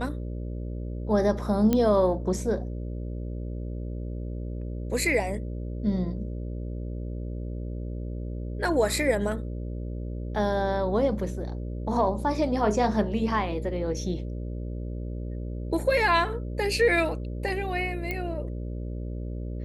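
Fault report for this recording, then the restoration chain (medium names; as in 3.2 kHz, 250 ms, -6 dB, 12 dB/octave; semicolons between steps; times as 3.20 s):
buzz 60 Hz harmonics 10 -33 dBFS
1.73 s: pop -11 dBFS
18.11 s: pop -17 dBFS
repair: de-click; de-hum 60 Hz, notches 10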